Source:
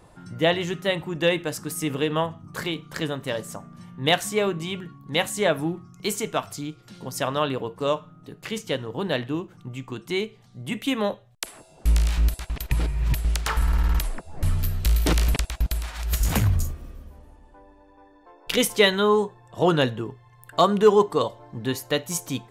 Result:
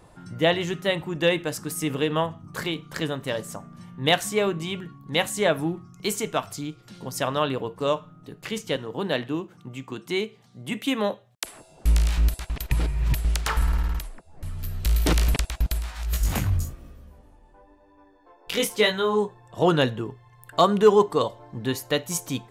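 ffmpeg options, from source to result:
-filter_complex "[0:a]asettb=1/sr,asplit=3[a][b][c];[a]atrim=end=8.764[d];[b]atrim=start=8.76:end=11.45,asetpts=PTS-STARTPTS,afade=t=in:d=0.004:c=qsin,afade=t=out:st=2.686:d=0.004:c=qsin,highpass=140[e];[c]atrim=start=11.446[f];[d][e]acrossfade=d=0.004:c1=hsin:c2=qsin[g];[g][f]acrossfade=d=0.004:c1=qsin:c2=hsin,asplit=3[h][i][j];[h]afade=t=out:st=15.78:d=0.02[k];[i]flanger=delay=17:depth=5.8:speed=1,afade=t=in:st=15.78:d=0.02,afade=t=out:st=19.23:d=0.02[l];[j]afade=t=in:st=19.23:d=0.02[m];[k][l][m]amix=inputs=3:normalize=0,asplit=3[n][o][p];[n]atrim=end=14.1,asetpts=PTS-STARTPTS,afade=t=out:st=13.62:d=0.48:silence=0.281838[q];[o]atrim=start=14.1:end=14.53,asetpts=PTS-STARTPTS,volume=-11dB[r];[p]atrim=start=14.53,asetpts=PTS-STARTPTS,afade=t=in:d=0.48:silence=0.281838[s];[q][r][s]concat=n=3:v=0:a=1"

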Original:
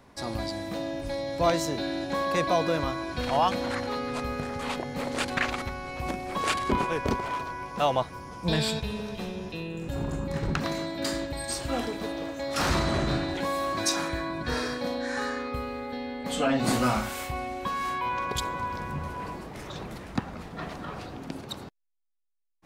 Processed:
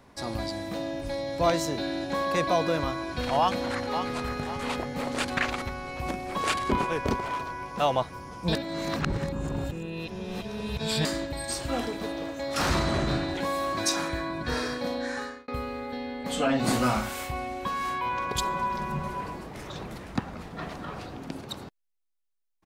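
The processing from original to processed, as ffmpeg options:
-filter_complex "[0:a]asplit=2[a][b];[b]afade=t=in:st=3.39:d=0.01,afade=t=out:st=4.31:d=0.01,aecho=0:1:540|1080|1620|2160|2700:0.398107|0.159243|0.0636971|0.0254789|0.0101915[c];[a][c]amix=inputs=2:normalize=0,asettb=1/sr,asplit=3[d][e][f];[d]atrim=end=18.374[g];[e]atrim=start=18.37:end=19.21,asetpts=PTS-STARTPTS,afade=t=in:d=0.004:c=qsin,afade=t=out:st=0.836:d=0.004:c=qsin,aecho=1:1:5.2:0.77,atrim=end_sample=37044[h];[f]atrim=start=19.206[i];[g][h]acrossfade=d=0.004:c1=hsin:c2=qsin[j];[j][i]acrossfade=d=0.004:c1=qsin:c2=hsin,asplit=4[k][l][m][n];[k]atrim=end=8.552[o];[l]atrim=start=8.548:end=11.052,asetpts=PTS-STARTPTS,areverse[p];[m]atrim=start=11.048:end=15.48,asetpts=PTS-STARTPTS,afade=t=out:st=4.012:d=0.42[q];[n]atrim=start=15.48,asetpts=PTS-STARTPTS,afade=t=in:d=0.004:c=hsin[r];[o][p]acrossfade=d=0.004:c1=hsin:c2=hsin[s];[q][r]concat=n=2:v=0:a=1[t];[s][t]acrossfade=d=0.004:c1=hsin:c2=hsin"

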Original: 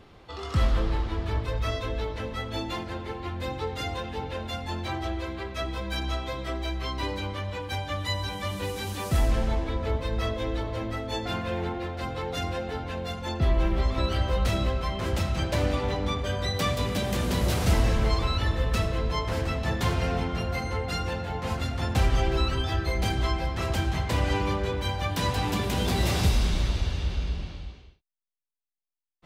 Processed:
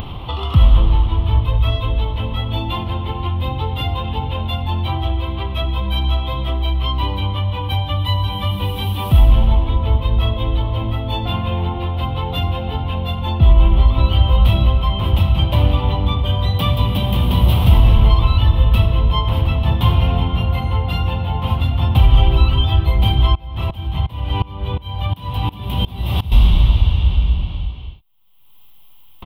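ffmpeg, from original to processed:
-filter_complex "[0:a]asettb=1/sr,asplit=3[a][b][c];[a]atrim=end=23.354[d];[b]atrim=start=23.35:end=26.32,asetpts=PTS-STARTPTS,afade=t=in:d=0.004:c=qsin,afade=t=out:st=2.966:d=0.004:c=qsin,aeval=exprs='val(0)*pow(10,-23*if(lt(mod(-2.8*n/s,1),2*abs(-2.8)/1000),1-mod(-2.8*n/s,1)/(2*abs(-2.8)/1000),(mod(-2.8*n/s,1)-2*abs(-2.8)/1000)/(1-2*abs(-2.8)/1000))/20)':c=same[e];[c]atrim=start=26.316[f];[d][e]acrossfade=d=0.004:c1=hsin:c2=qsin[g];[g][f]acrossfade=d=0.004:c1=qsin:c2=hsin,firequalizer=gain_entry='entry(120,0);entry(170,-5);entry(430,-14);entry(990,-3);entry(1600,-21);entry(3100,0);entry(4600,-22);entry(6900,-30);entry(9800,-15);entry(14000,-4)':delay=0.05:min_phase=1,acompressor=mode=upward:threshold=-30dB:ratio=2.5,alimiter=level_in=15dB:limit=-1dB:release=50:level=0:latency=1,volume=-1dB"

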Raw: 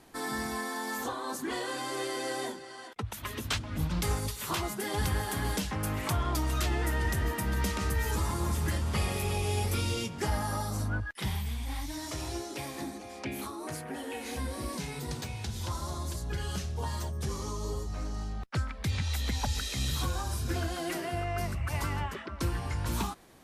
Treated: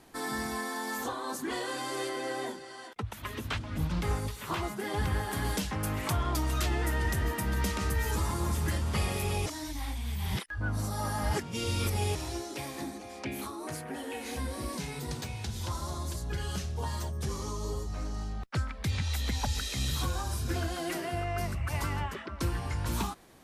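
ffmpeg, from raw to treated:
-filter_complex "[0:a]asettb=1/sr,asplit=3[a][b][c];[a]atrim=end=2.094[d];[b]atrim=start=2.09:end=5.33,asetpts=PTS-STARTPTS,afade=t=in:d=0.004:c=qsin,afade=t=out:st=3.236:d=0.004:c=qsin,acrossover=split=3100[e][f];[f]acompressor=threshold=-46dB:ratio=4:attack=1:release=60[g];[e][g]amix=inputs=2:normalize=0[h];[c]atrim=start=5.326[i];[d][h]acrossfade=d=0.004:c1=hsin:c2=qsin[j];[j][i]acrossfade=d=0.004:c1=qsin:c2=hsin,asplit=3[k][l][m];[k]atrim=end=9.462[n];[l]atrim=start=9.458:end=12.152,asetpts=PTS-STARTPTS,areverse[o];[m]atrim=start=12.148[p];[n][o]acrossfade=d=0.004:c1=hsin:c2=hsin[q];[q][p]acrossfade=d=0.004:c1=hsin:c2=hsin"

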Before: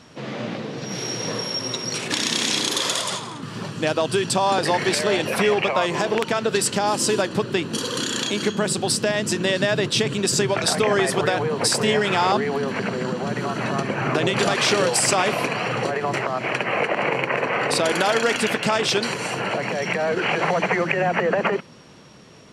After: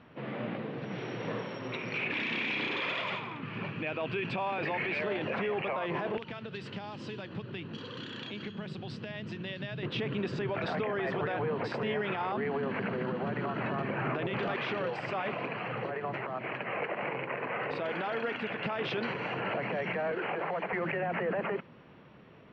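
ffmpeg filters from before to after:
-filter_complex "[0:a]asettb=1/sr,asplit=3[a][b][c];[a]atrim=end=1.724[d];[b]atrim=start=1.72:end=5.01,asetpts=PTS-STARTPTS,afade=t=in:d=0.004:c=qsin,afade=t=out:st=3.286:d=0.004:c=qsin,equalizer=f=2.4k:t=o:w=0.39:g=13.5[e];[c]atrim=start=5.006[f];[d][e]acrossfade=d=0.004:c1=hsin:c2=qsin[g];[g][f]acrossfade=d=0.004:c1=qsin:c2=hsin,asettb=1/sr,asplit=3[h][i][j];[h]atrim=end=6.174[k];[i]atrim=start=6.17:end=9.83,asetpts=PTS-STARTPTS,afade=t=in:d=0.004:c=qsin,afade=t=out:st=3.656:d=0.004:c=qsin,acrossover=split=150|3000[l][m][n];[m]acompressor=threshold=-36dB:ratio=4:attack=3.2:release=140:knee=2.83:detection=peak[o];[l][o][n]amix=inputs=3:normalize=0[p];[j]atrim=start=9.826[q];[k][p]acrossfade=d=0.004:c1=hsin:c2=qsin[r];[r][q]acrossfade=d=0.004:c1=qsin:c2=hsin,asettb=1/sr,asplit=3[s][t][u];[s]atrim=end=14.564[v];[t]atrim=start=14.56:end=18.58,asetpts=PTS-STARTPTS,afade=t=in:d=0.004:c=qsin,afade=t=out:st=4.016:d=0.004:c=qsin,flanger=delay=0.2:depth=2.1:regen=-78:speed=1.1:shape=triangular[w];[u]atrim=start=18.576[x];[v][w]acrossfade=d=0.004:c1=hsin:c2=qsin[y];[y][x]acrossfade=d=0.004:c1=qsin:c2=hsin,asettb=1/sr,asplit=3[z][aa][ab];[z]atrim=end=20.114[ac];[aa]atrim=start=20.11:end=20.73,asetpts=PTS-STARTPTS,afade=t=in:d=0.004:c=qsin,afade=t=out:st=0.616:d=0.004:c=qsin,acrossover=split=290|1400[ad][ae][af];[ad]acompressor=threshold=-42dB:ratio=4[ag];[ae]acompressor=threshold=-24dB:ratio=4[ah];[af]acompressor=threshold=-34dB:ratio=4[ai];[ag][ah][ai]amix=inputs=3:normalize=0[aj];[ab]atrim=start=20.726[ak];[ac][aj]acrossfade=d=0.004:c1=hsin:c2=qsin[al];[al][ak]acrossfade=d=0.004:c1=qsin:c2=hsin,lowpass=f=2.8k:w=0.5412,lowpass=f=2.8k:w=1.3066,alimiter=limit=-17.5dB:level=0:latency=1:release=15,volume=-7dB"

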